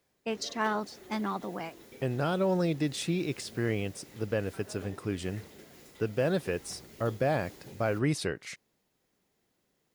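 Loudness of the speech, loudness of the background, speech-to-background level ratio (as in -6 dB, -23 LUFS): -32.5 LUFS, -51.0 LUFS, 18.5 dB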